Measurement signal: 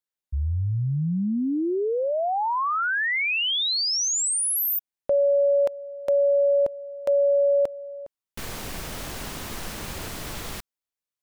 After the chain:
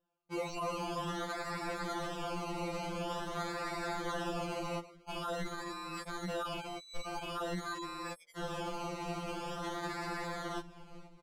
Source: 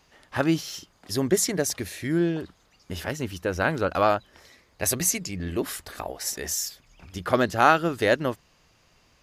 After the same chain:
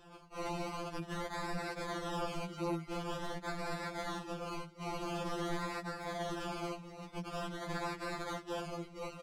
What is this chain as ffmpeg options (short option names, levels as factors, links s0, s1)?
-filter_complex "[0:a]asplit=2[s0][s1];[s1]adelay=471,lowpass=f=2200:p=1,volume=0.075,asplit=2[s2][s3];[s3]adelay=471,lowpass=f=2200:p=1,volume=0.51,asplit=2[s4][s5];[s5]adelay=471,lowpass=f=2200:p=1,volume=0.51[s6];[s2][s4][s6]amix=inputs=3:normalize=0[s7];[s0][s7]amix=inputs=2:normalize=0,acrusher=samples=20:mix=1:aa=0.000001:lfo=1:lforange=12:lforate=0.47,areverse,acompressor=threshold=0.0282:ratio=8:attack=0.16:release=231:knee=6:detection=rms,areverse,aeval=exprs='(mod(94.4*val(0)+1,2)-1)/94.4':c=same,adynamicsmooth=sensitivity=4.5:basefreq=7700,afftfilt=real='re*2.83*eq(mod(b,8),0)':imag='im*2.83*eq(mod(b,8),0)':win_size=2048:overlap=0.75,volume=2.51"